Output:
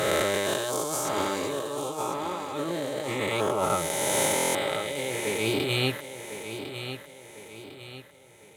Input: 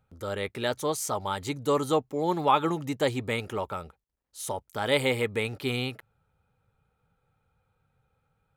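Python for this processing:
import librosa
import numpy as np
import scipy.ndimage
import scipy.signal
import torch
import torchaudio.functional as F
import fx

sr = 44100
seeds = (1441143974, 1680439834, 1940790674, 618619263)

y = fx.spec_swells(x, sr, rise_s=2.99)
y = scipy.signal.sosfilt(scipy.signal.butter(2, 140.0, 'highpass', fs=sr, output='sos'), y)
y = fx.peak_eq(y, sr, hz=1500.0, db=-5.0, octaves=2.0)
y = fx.over_compress(y, sr, threshold_db=-32.0, ratio=-1.0)
y = fx.notch_comb(y, sr, f0_hz=240.0)
y = fx.echo_feedback(y, sr, ms=1052, feedback_pct=42, wet_db=-10)
y = fx.buffer_glitch(y, sr, at_s=(4.34,), block=1024, repeats=8)
y = y * librosa.db_to_amplitude(4.0)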